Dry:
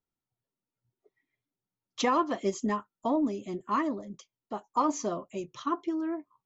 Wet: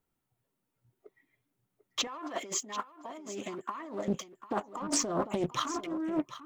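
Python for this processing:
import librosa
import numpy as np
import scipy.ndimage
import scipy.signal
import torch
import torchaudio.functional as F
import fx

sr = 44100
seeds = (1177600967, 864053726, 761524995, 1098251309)

y = fx.leveller(x, sr, passes=1)
y = fx.peak_eq(y, sr, hz=5000.0, db=-7.0, octaves=1.2)
y = fx.over_compress(y, sr, threshold_db=-36.0, ratio=-1.0)
y = fx.highpass(y, sr, hz=940.0, slope=6, at=(2.07, 4.08))
y = y + 10.0 ** (-13.5 / 20.0) * np.pad(y, (int(744 * sr / 1000.0), 0))[:len(y)]
y = fx.doppler_dist(y, sr, depth_ms=0.55)
y = y * 10.0 ** (3.5 / 20.0)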